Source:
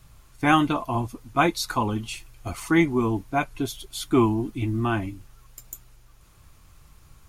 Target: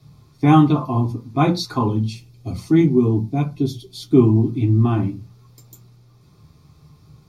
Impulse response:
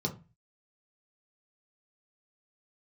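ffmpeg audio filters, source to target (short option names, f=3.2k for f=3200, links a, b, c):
-filter_complex "[0:a]asettb=1/sr,asplit=3[a][b][c];[a]atrim=end=1.884[d];[b]atrim=start=1.88:end=4.36,asetpts=PTS-STARTPTS,afade=t=in:d=0.004:c=qsin,afade=t=out:st=2.476:d=0.004:c=qsin,equalizer=f=1.2k:t=o:w=1.9:g=-8.5[e];[c]atrim=start=4.356[f];[d][e]acrossfade=d=0.004:c1=hsin:c2=qsin[g];[g][f]acrossfade=d=0.004:c1=qsin:c2=hsin[h];[1:a]atrim=start_sample=2205,atrim=end_sample=6615[i];[h][i]afir=irnorm=-1:irlink=0,volume=-4.5dB"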